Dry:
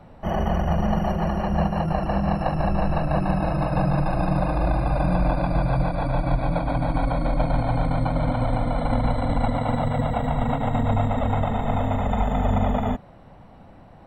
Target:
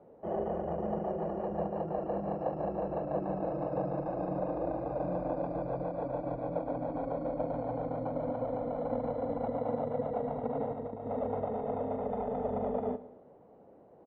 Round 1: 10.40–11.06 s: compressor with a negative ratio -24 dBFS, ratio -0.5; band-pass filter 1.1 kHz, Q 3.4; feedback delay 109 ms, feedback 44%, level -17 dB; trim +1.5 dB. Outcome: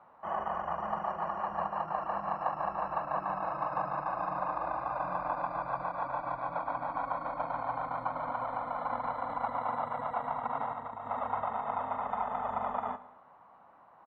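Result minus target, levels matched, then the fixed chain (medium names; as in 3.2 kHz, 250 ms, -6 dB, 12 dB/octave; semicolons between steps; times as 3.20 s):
500 Hz band -7.0 dB
10.40–11.06 s: compressor with a negative ratio -24 dBFS, ratio -0.5; band-pass filter 440 Hz, Q 3.4; feedback delay 109 ms, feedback 44%, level -17 dB; trim +1.5 dB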